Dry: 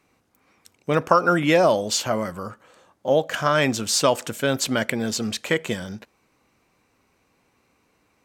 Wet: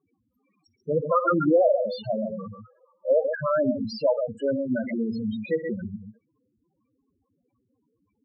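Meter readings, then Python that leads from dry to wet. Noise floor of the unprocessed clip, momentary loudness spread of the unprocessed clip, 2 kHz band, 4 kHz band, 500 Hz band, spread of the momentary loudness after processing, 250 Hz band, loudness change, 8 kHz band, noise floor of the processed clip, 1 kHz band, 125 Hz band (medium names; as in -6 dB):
-67 dBFS, 14 LU, -12.5 dB, -17.0 dB, -1.0 dB, 15 LU, -1.5 dB, -3.5 dB, under -35 dB, -75 dBFS, -6.5 dB, -6.5 dB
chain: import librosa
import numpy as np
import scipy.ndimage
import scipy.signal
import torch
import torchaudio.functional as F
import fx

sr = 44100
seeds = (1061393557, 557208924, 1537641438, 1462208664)

y = fx.env_lowpass_down(x, sr, base_hz=2100.0, full_db=-14.5)
y = fx.echo_multitap(y, sr, ms=(56, 119, 137), db=(-12.0, -17.0, -7.0))
y = fx.spec_topn(y, sr, count=4)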